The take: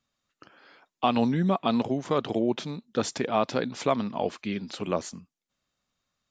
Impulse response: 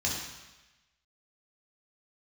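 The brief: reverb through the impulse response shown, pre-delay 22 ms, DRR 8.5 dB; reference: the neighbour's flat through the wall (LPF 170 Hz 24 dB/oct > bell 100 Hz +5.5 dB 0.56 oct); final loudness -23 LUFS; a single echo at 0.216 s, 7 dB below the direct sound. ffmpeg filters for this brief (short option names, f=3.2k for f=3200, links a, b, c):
-filter_complex "[0:a]aecho=1:1:216:0.447,asplit=2[a][b];[1:a]atrim=start_sample=2205,adelay=22[c];[b][c]afir=irnorm=-1:irlink=0,volume=-16dB[d];[a][d]amix=inputs=2:normalize=0,lowpass=f=170:w=0.5412,lowpass=f=170:w=1.3066,equalizer=f=100:t=o:w=0.56:g=5.5,volume=12.5dB"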